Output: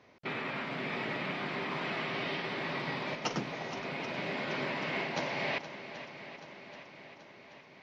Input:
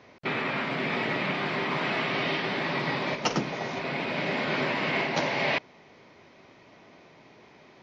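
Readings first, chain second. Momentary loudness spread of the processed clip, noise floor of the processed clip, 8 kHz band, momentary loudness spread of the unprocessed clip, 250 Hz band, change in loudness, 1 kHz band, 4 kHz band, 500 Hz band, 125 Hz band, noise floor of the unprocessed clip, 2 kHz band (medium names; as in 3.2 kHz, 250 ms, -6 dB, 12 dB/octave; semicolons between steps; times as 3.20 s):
15 LU, -56 dBFS, no reading, 4 LU, -7.0 dB, -7.5 dB, -7.0 dB, -7.0 dB, -7.0 dB, -7.0 dB, -55 dBFS, -7.0 dB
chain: rattle on loud lows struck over -36 dBFS, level -34 dBFS; shuffle delay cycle 781 ms, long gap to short 1.5:1, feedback 56%, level -13 dB; trim -7.5 dB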